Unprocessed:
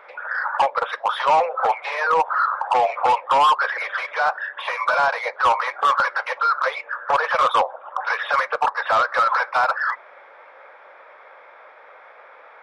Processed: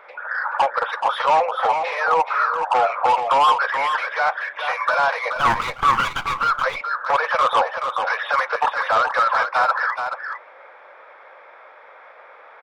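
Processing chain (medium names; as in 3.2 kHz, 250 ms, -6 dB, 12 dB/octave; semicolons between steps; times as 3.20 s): 5.36–6.39 s: comb filter that takes the minimum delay 0.84 ms; delay 428 ms -7 dB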